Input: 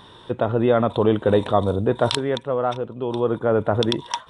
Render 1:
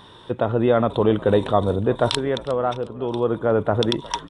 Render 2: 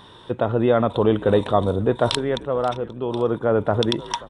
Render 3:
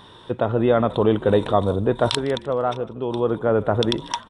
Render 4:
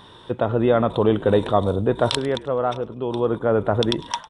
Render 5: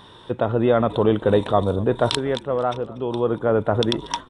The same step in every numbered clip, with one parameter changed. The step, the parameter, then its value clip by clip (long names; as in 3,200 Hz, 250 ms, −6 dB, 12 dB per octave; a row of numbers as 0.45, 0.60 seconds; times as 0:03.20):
echo with shifted repeats, delay time: 360, 532, 154, 103, 239 milliseconds